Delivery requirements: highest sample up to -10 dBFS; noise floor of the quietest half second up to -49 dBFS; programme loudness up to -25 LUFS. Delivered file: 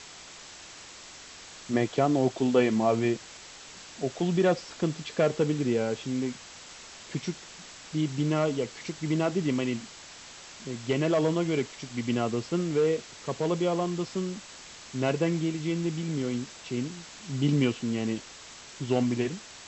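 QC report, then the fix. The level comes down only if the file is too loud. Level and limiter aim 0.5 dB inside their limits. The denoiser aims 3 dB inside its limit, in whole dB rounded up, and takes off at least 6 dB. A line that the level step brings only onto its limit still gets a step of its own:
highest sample -11.5 dBFS: pass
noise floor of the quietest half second -47 dBFS: fail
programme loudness -29.0 LUFS: pass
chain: noise reduction 6 dB, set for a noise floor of -47 dBFS

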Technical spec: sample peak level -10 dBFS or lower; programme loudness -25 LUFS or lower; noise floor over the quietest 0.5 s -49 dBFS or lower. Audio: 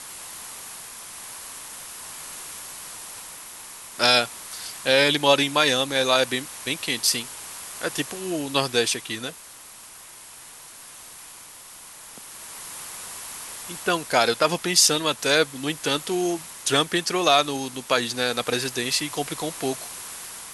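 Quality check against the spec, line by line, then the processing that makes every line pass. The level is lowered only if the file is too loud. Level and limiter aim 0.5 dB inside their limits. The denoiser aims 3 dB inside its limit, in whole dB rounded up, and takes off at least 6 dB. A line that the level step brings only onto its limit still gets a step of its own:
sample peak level -5.0 dBFS: fail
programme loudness -22.5 LUFS: fail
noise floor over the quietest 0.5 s -44 dBFS: fail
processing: noise reduction 6 dB, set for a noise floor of -44 dBFS; trim -3 dB; peak limiter -10.5 dBFS

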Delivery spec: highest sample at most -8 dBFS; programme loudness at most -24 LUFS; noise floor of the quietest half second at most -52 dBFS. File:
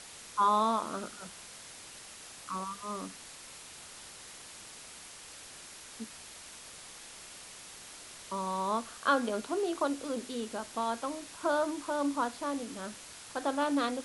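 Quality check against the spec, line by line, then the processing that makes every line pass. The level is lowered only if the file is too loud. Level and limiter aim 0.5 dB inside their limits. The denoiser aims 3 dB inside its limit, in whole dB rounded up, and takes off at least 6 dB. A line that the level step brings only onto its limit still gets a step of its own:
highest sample -15.0 dBFS: pass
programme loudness -33.5 LUFS: pass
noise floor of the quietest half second -49 dBFS: fail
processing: noise reduction 6 dB, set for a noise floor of -49 dBFS

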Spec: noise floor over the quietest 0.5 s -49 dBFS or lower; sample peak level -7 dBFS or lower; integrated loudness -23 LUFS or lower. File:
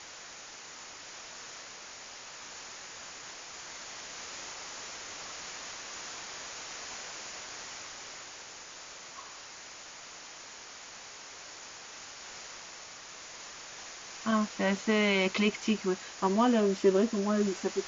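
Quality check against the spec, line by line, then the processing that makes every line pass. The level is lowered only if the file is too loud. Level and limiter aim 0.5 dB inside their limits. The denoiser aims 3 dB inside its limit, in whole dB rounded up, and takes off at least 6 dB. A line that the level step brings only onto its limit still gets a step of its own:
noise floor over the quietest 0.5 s -48 dBFS: fail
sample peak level -14.0 dBFS: pass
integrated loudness -34.0 LUFS: pass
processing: noise reduction 6 dB, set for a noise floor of -48 dBFS

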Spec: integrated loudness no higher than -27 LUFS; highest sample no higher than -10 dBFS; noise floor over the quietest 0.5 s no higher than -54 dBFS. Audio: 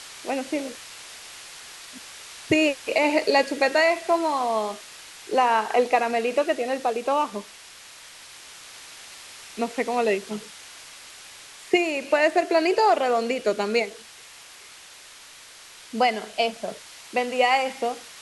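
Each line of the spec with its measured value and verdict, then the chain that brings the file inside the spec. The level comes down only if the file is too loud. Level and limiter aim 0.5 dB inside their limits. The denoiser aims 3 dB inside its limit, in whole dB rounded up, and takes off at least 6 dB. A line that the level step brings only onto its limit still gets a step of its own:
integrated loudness -23.5 LUFS: fail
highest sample -7.0 dBFS: fail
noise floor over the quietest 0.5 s -46 dBFS: fail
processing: noise reduction 7 dB, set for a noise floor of -46 dBFS; trim -4 dB

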